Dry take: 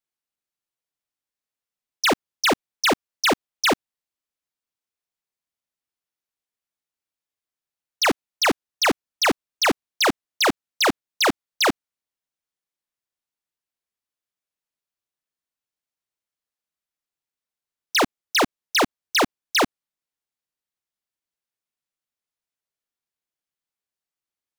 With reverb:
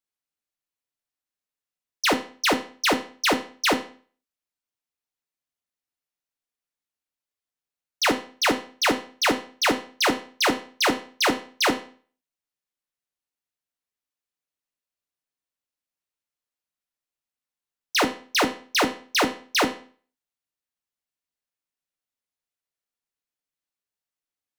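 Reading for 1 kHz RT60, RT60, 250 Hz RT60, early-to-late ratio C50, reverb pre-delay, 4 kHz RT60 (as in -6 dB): 0.45 s, 0.45 s, 0.50 s, 11.5 dB, 4 ms, 0.40 s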